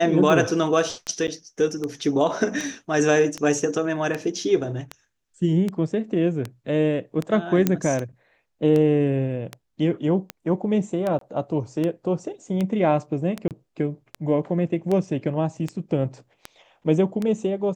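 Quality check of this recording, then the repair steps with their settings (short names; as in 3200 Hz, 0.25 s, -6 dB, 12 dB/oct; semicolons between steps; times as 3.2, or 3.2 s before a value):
tick 78 rpm -14 dBFS
1.27–1.28 gap 9.2 ms
7.67 pop -6 dBFS
11.19–11.21 gap 23 ms
13.48–13.51 gap 28 ms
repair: de-click; interpolate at 1.27, 9.2 ms; interpolate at 11.19, 23 ms; interpolate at 13.48, 28 ms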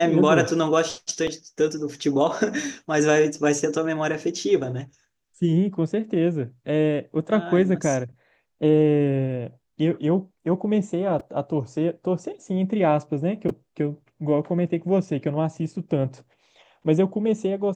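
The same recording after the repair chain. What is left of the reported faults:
none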